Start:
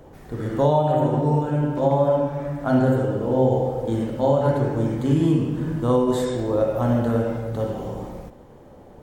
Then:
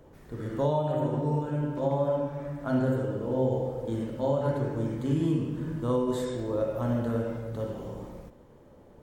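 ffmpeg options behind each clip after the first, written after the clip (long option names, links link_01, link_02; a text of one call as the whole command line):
ffmpeg -i in.wav -af "equalizer=frequency=760:width=7.8:gain=-8,volume=-7.5dB" out.wav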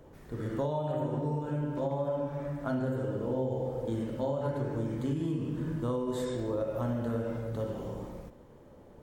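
ffmpeg -i in.wav -af "acompressor=threshold=-28dB:ratio=6" out.wav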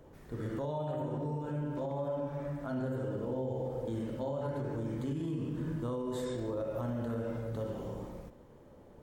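ffmpeg -i in.wav -af "alimiter=level_in=2dB:limit=-24dB:level=0:latency=1:release=22,volume=-2dB,volume=-2dB" out.wav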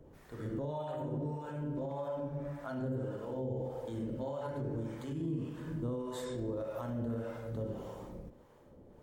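ffmpeg -i in.wav -filter_complex "[0:a]acrossover=split=550[link_01][link_02];[link_01]aeval=exprs='val(0)*(1-0.7/2+0.7/2*cos(2*PI*1.7*n/s))':channel_layout=same[link_03];[link_02]aeval=exprs='val(0)*(1-0.7/2-0.7/2*cos(2*PI*1.7*n/s))':channel_layout=same[link_04];[link_03][link_04]amix=inputs=2:normalize=0,volume=1dB" out.wav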